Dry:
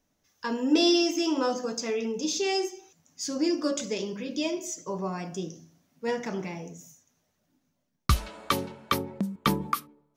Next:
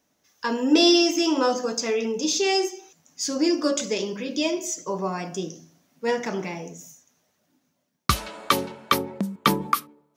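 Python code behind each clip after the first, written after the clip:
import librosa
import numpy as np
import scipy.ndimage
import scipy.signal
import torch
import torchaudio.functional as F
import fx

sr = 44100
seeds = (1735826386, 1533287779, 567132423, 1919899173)

y = fx.highpass(x, sr, hz=230.0, slope=6)
y = y * librosa.db_to_amplitude(6.0)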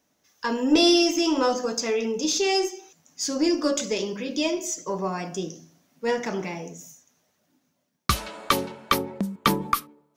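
y = fx.diode_clip(x, sr, knee_db=-7.0)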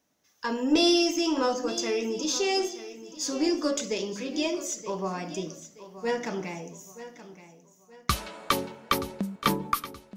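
y = fx.echo_feedback(x, sr, ms=925, feedback_pct=36, wet_db=-14.5)
y = y * librosa.db_to_amplitude(-3.5)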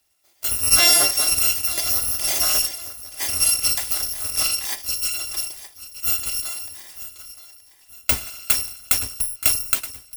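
y = fx.bit_reversed(x, sr, seeds[0], block=256)
y = y * librosa.db_to_amplitude(6.5)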